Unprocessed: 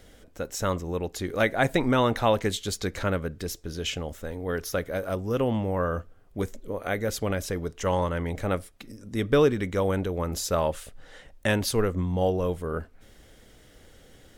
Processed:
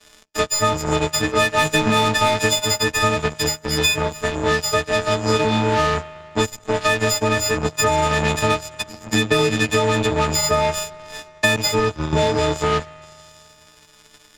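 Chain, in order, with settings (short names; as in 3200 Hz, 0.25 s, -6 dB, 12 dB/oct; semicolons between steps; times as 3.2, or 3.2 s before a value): frequency quantiser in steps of 6 st; 11.56–12.13 expander -20 dBFS; harmonic-percussive split percussive -6 dB; sample leveller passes 3; compressor 4:1, threshold -14 dBFS, peak gain reduction 5 dB; downsampling 16000 Hz; reverb RT60 2.6 s, pre-delay 3 ms, DRR 11.5 dB; power-law curve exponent 2; three-band squash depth 70%; gain +5.5 dB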